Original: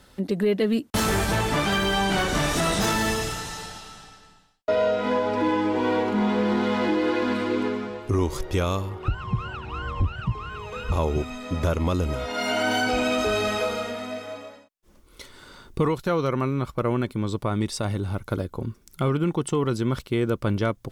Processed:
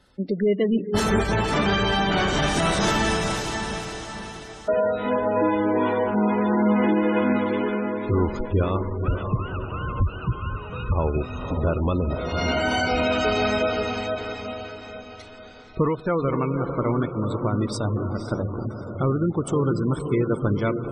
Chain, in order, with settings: 7.83–8.81 LPF 3600 Hz 6 dB/oct; on a send: diffused feedback echo 0.522 s, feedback 59%, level -5.5 dB; on the sum: reverb RT60 1.9 s, pre-delay 50 ms, DRR 16.5 dB; in parallel at -5 dB: soft clip -25 dBFS, distortion -9 dB; on the sum: spectral gate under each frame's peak -25 dB strong; upward expander 1.5:1, over -36 dBFS

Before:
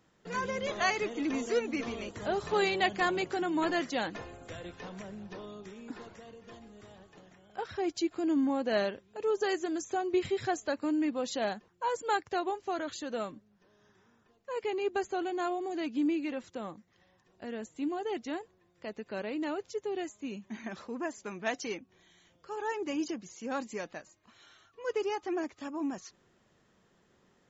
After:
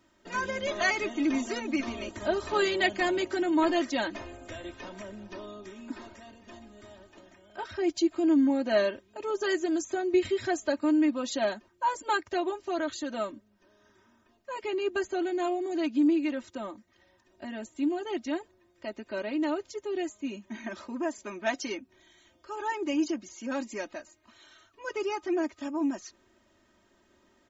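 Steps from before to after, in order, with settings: comb 3.2 ms, depth 99%

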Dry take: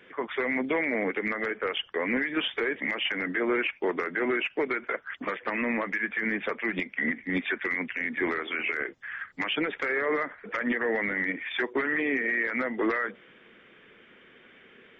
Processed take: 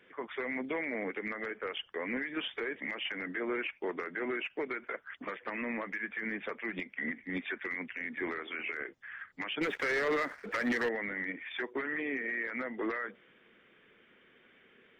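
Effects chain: 9.61–10.89 sample leveller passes 2; gain -8 dB

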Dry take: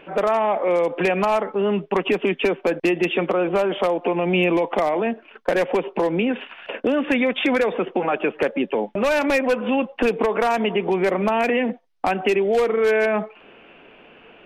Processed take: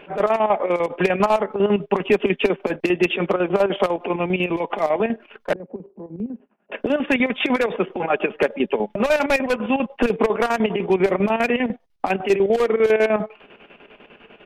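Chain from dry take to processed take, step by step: comb 4.9 ms, depth 32%; 4.27–4.83 compressor, threshold -19 dBFS, peak gain reduction 5 dB; 5.53–6.72 ladder band-pass 230 Hz, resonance 45%; chopper 10 Hz, depth 65%, duty 60%; gain +2 dB

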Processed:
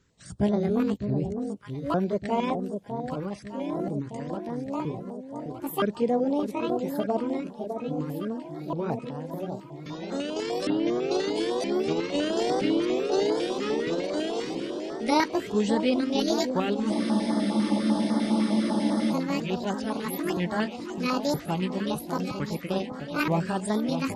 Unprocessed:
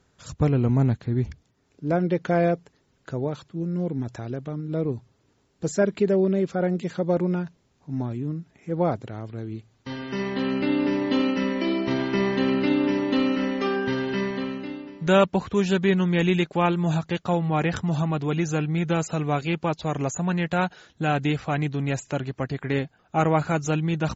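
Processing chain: repeated pitch sweeps +12 st, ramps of 0.97 s; on a send: echo with dull and thin repeats by turns 0.607 s, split 940 Hz, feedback 76%, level -7 dB; on the sum: spectral freeze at 16.94, 2.18 s; stepped notch 10 Hz 700–2600 Hz; gain -2 dB

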